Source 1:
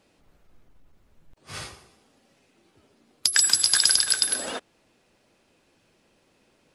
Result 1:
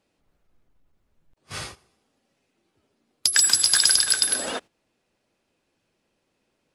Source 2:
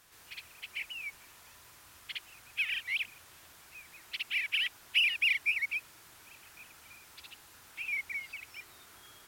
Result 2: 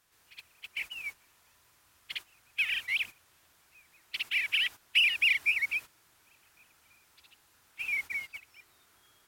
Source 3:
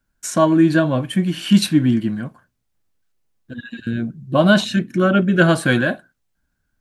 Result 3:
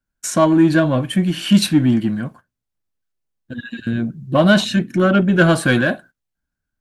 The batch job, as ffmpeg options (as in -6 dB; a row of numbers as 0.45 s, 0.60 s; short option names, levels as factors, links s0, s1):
-filter_complex "[0:a]agate=range=0.251:threshold=0.00794:ratio=16:detection=peak,asplit=2[s0][s1];[s1]asoftclip=type=tanh:threshold=0.133,volume=0.562[s2];[s0][s2]amix=inputs=2:normalize=0,volume=0.891"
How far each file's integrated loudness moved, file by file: +2.0 LU, +3.0 LU, +1.0 LU